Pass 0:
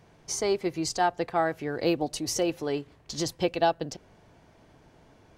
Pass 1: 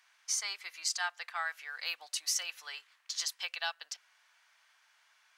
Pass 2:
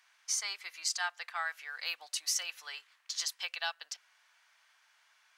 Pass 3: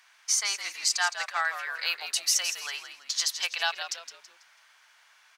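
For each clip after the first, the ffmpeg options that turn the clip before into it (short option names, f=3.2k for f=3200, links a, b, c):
-af "highpass=f=1.3k:w=0.5412,highpass=f=1.3k:w=1.3066"
-af anull
-filter_complex "[0:a]asplit=5[a][b][c][d][e];[b]adelay=164,afreqshift=-80,volume=-9.5dB[f];[c]adelay=328,afreqshift=-160,volume=-18.6dB[g];[d]adelay=492,afreqshift=-240,volume=-27.7dB[h];[e]adelay=656,afreqshift=-320,volume=-36.9dB[i];[a][f][g][h][i]amix=inputs=5:normalize=0,volume=7.5dB"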